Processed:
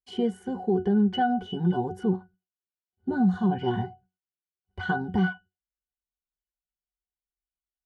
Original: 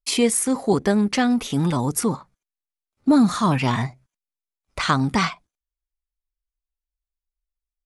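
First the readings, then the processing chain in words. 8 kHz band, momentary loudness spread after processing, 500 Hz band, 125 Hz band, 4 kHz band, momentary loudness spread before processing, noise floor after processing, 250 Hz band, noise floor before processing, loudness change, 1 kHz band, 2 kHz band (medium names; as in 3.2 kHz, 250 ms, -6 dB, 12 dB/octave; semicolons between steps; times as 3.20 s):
under -30 dB, 9 LU, -5.0 dB, -5.0 dB, -12.0 dB, 9 LU, under -85 dBFS, -5.5 dB, under -85 dBFS, -6.0 dB, -5.0 dB, -6.0 dB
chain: dynamic bell 490 Hz, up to +4 dB, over -32 dBFS, Q 0.76; pitch-class resonator F#, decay 0.18 s; peak limiter -23 dBFS, peak gain reduction 10 dB; trim +8 dB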